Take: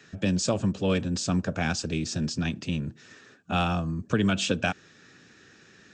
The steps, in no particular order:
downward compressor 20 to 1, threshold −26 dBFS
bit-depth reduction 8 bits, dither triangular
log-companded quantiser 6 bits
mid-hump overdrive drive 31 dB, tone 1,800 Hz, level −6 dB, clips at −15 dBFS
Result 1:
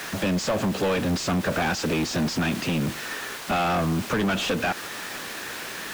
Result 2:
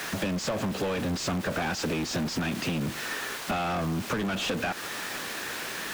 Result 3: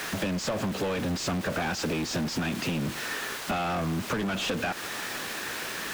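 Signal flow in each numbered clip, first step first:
bit-depth reduction, then downward compressor, then mid-hump overdrive, then log-companded quantiser
bit-depth reduction, then log-companded quantiser, then mid-hump overdrive, then downward compressor
log-companded quantiser, then bit-depth reduction, then mid-hump overdrive, then downward compressor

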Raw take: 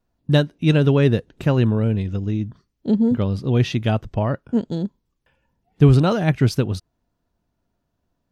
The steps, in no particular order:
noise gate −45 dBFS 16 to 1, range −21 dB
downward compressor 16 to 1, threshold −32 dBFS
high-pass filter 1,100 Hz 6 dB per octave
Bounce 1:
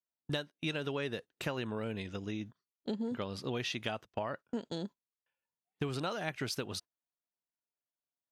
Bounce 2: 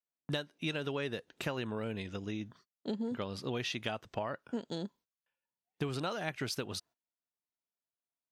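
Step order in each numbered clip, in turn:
high-pass filter, then downward compressor, then noise gate
noise gate, then high-pass filter, then downward compressor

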